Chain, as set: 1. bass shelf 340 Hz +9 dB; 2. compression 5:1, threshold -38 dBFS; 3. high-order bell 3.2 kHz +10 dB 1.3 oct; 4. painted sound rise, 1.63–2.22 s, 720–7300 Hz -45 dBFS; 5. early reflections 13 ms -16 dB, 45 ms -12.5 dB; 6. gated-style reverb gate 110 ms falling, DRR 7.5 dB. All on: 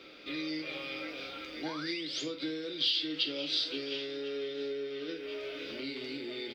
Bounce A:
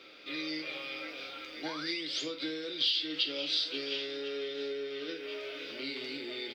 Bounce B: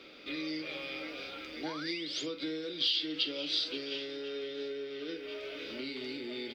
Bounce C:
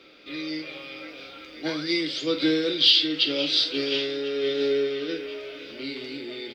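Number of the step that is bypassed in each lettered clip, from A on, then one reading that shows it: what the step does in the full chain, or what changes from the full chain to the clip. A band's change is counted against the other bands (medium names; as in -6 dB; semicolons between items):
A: 1, 125 Hz band -5.5 dB; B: 6, echo-to-direct -6.0 dB to -11.0 dB; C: 2, mean gain reduction 6.5 dB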